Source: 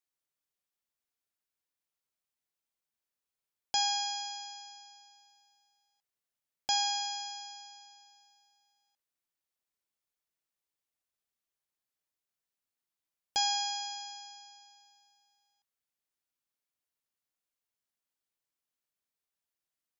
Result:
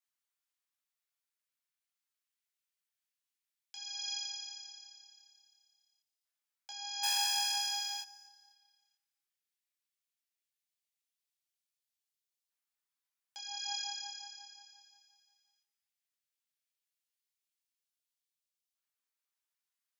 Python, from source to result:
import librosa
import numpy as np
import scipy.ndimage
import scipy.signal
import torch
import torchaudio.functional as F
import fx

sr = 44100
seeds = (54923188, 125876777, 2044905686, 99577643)

y = fx.over_compress(x, sr, threshold_db=-36.0, ratio=-1.0)
y = fx.leveller(y, sr, passes=5, at=(7.03, 8.02))
y = fx.filter_lfo_highpass(y, sr, shape='saw_up', hz=0.16, low_hz=940.0, high_hz=3300.0, q=0.89)
y = fx.echo_feedback(y, sr, ms=252, feedback_pct=41, wet_db=-24)
y = fx.detune_double(y, sr, cents=12)